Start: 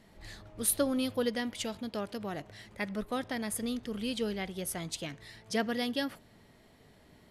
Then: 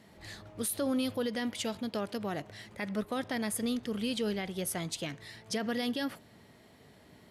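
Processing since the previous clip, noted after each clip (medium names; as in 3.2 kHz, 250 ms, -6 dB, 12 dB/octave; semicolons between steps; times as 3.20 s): high-pass 77 Hz; peak limiter -26.5 dBFS, peak gain reduction 11 dB; trim +2.5 dB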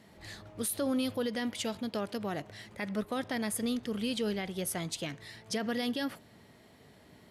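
no audible change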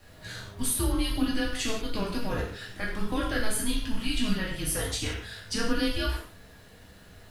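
added noise pink -67 dBFS; frequency shift -220 Hz; gated-style reverb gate 210 ms falling, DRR -5.5 dB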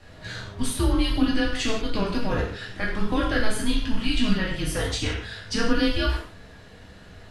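distance through air 68 m; trim +5.5 dB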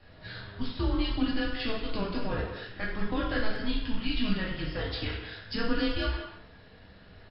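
brick-wall FIR low-pass 5.4 kHz; speakerphone echo 190 ms, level -9 dB; trim -6.5 dB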